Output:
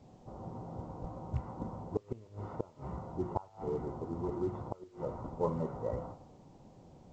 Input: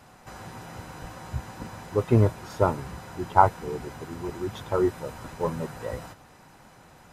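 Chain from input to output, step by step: rattling part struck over -21 dBFS, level -20 dBFS; low-pass opened by the level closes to 460 Hz, open at -21 dBFS; low shelf 100 Hz -2.5 dB; de-hum 51.06 Hz, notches 27; in parallel at +2.5 dB: compressor 16:1, threshold -32 dBFS, peak gain reduction 22 dB; on the sum: flipped gate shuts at -12 dBFS, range -28 dB; polynomial smoothing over 65 samples; gain -7 dB; A-law 128 kbps 16000 Hz

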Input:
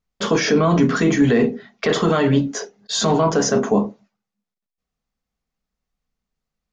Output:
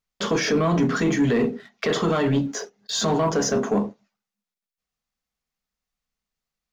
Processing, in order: sample leveller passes 1; mismatched tape noise reduction encoder only; gain -7 dB

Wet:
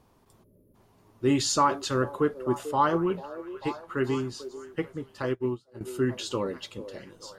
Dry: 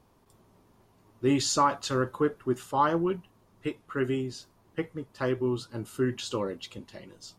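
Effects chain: delay with a stepping band-pass 0.443 s, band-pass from 480 Hz, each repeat 0.7 oct, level -10 dB; 0.44–0.75 spectral gain 640–10000 Hz -25 dB; 5.22–5.81 upward expander 2.5:1, over -42 dBFS; gain +1 dB

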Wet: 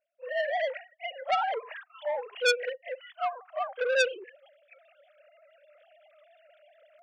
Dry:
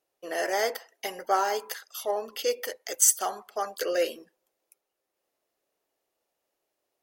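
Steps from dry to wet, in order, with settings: sine-wave speech; low shelf 410 Hz -7.5 dB; reverse; upward compressor, threshold -43 dBFS; reverse; pre-echo 32 ms -14 dB; core saturation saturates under 3300 Hz; gain +5.5 dB

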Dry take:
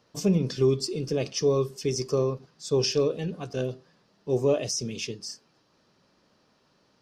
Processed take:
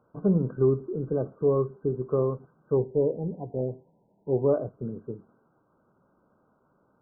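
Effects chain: brick-wall FIR low-pass 1600 Hz, from 2.76 s 1000 Hz, from 4.44 s 1600 Hz

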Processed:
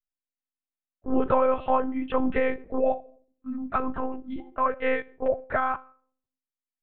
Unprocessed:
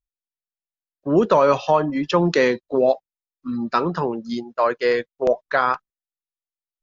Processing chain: LPF 2600 Hz 24 dB/oct; shoebox room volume 660 m³, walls furnished, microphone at 0.43 m; monotone LPC vocoder at 8 kHz 260 Hz; gain -6 dB

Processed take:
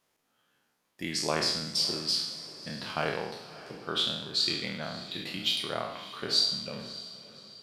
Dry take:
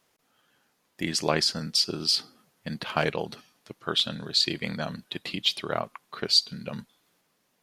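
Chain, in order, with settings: spectral trails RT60 0.79 s; 5.11–5.63 high shelf 12000 Hz +11.5 dB; diffused feedback echo 0.598 s, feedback 44%, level -15.5 dB; gain -7.5 dB

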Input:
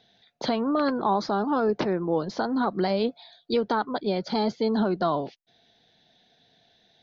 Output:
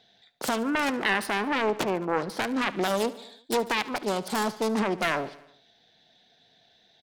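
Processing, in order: self-modulated delay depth 0.46 ms; low shelf 440 Hz -5 dB; on a send: feedback echo 72 ms, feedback 59%, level -17.5 dB; on the sum: gain +1.5 dB

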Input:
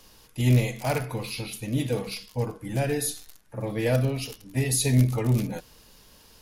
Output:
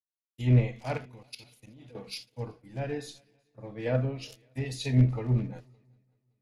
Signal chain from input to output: treble ducked by the level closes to 2500 Hz, closed at -19 dBFS; gate -40 dBFS, range -22 dB; 0.97–1.95 level quantiser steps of 17 dB; 2.66–4.26 high shelf 9800 Hz -11 dB; on a send: multi-head echo 0.189 s, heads second and third, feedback 57%, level -22 dB; on the sum: three-band expander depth 100%; gain -7 dB

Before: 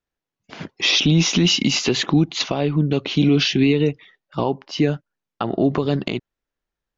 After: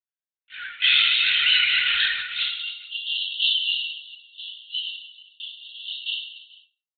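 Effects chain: minimum comb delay 9.3 ms; gate with hold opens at -40 dBFS; brick-wall FIR high-pass 1300 Hz, from 2.38 s 2700 Hz; doubler 25 ms -5 dB; reverse bouncing-ball echo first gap 40 ms, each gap 1.4×, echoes 5; reverb RT60 0.40 s, pre-delay 5 ms, DRR 2 dB; LPC vocoder at 8 kHz whisper; maximiser +10.5 dB; gain -7 dB

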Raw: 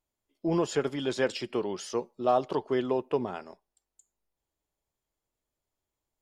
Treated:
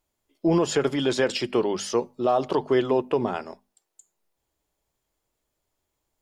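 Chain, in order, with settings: notches 50/100/150/200/250 Hz; limiter -20 dBFS, peak gain reduction 6.5 dB; gain +8 dB

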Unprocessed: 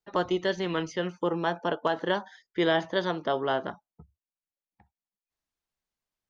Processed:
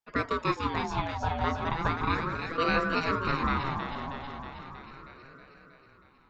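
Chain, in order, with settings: echo with dull and thin repeats by turns 0.159 s, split 820 Hz, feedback 81%, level -3 dB; ring modulator with a swept carrier 630 Hz, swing 35%, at 0.36 Hz

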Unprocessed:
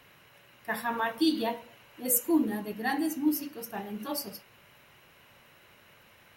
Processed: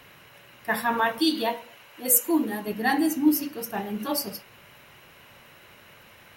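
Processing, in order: 1.2–2.66 low shelf 320 Hz -9.5 dB; gain +6.5 dB

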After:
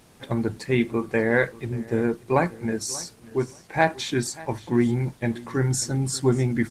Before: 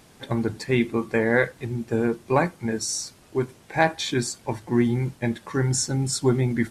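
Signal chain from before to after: on a send: feedback echo 0.586 s, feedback 20%, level -19.5 dB; on the sum: Opus 20 kbps 48000 Hz

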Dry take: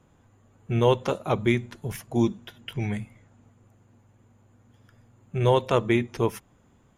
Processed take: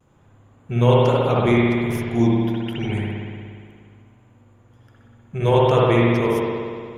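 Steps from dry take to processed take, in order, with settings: spring tank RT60 2.1 s, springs 59 ms, chirp 45 ms, DRR -5.5 dB; vibrato 0.31 Hz 18 cents

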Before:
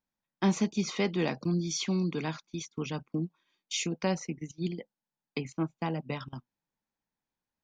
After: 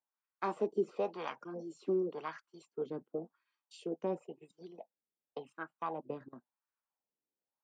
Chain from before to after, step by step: formant shift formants +4 st; wah 0.93 Hz 380–1400 Hz, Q 2.1

